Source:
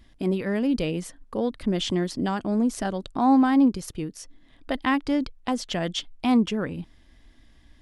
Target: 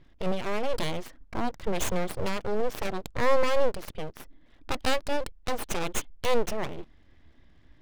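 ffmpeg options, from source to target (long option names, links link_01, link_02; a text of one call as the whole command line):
ffmpeg -i in.wav -af "highshelf=frequency=2900:gain=8,adynamicsmooth=sensitivity=6:basefreq=2200,aeval=exprs='abs(val(0))':channel_layout=same,volume=-1dB" out.wav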